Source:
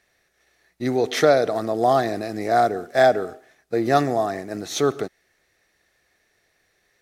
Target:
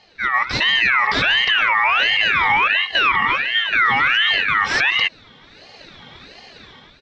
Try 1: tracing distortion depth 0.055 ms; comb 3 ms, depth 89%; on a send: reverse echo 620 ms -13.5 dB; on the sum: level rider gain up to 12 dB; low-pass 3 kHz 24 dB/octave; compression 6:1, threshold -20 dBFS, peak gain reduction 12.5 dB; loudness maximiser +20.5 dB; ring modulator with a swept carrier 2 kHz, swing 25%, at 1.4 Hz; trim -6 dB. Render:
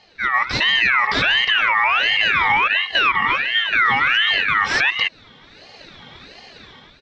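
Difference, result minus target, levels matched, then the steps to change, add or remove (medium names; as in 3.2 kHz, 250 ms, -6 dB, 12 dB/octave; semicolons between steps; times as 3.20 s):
compression: peak gain reduction +12.5 dB
remove: compression 6:1, threshold -20 dBFS, peak gain reduction 12.5 dB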